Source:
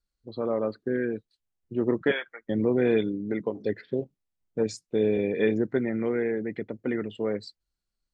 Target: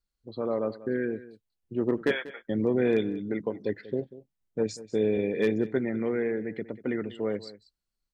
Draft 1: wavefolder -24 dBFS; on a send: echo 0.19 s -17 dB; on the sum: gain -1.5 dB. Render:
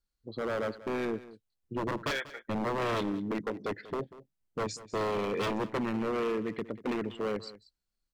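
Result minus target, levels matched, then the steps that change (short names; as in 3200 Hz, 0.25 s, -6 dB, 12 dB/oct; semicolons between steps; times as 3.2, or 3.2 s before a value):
wavefolder: distortion +33 dB
change: wavefolder -13.5 dBFS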